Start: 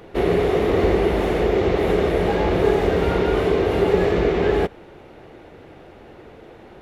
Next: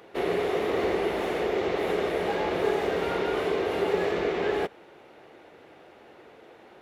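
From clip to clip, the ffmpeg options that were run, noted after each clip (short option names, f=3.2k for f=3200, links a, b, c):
-af "highpass=f=500:p=1,volume=-4dB"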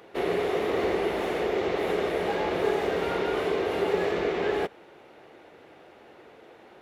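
-af anull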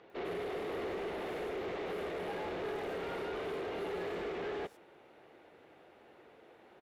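-filter_complex "[0:a]asoftclip=type=tanh:threshold=-26dB,acrossover=split=5700[a][b];[b]adelay=100[c];[a][c]amix=inputs=2:normalize=0,volume=-8dB"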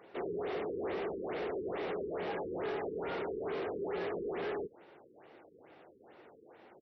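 -af "highpass=f=94:p=1,afftfilt=real='re*lt(b*sr/1024,470*pow(6100/470,0.5+0.5*sin(2*PI*2.3*pts/sr)))':imag='im*lt(b*sr/1024,470*pow(6100/470,0.5+0.5*sin(2*PI*2.3*pts/sr)))':win_size=1024:overlap=0.75,volume=2dB"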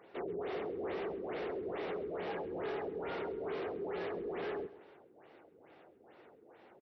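-af "aecho=1:1:133|266|399:0.141|0.0565|0.0226,volume=-2dB"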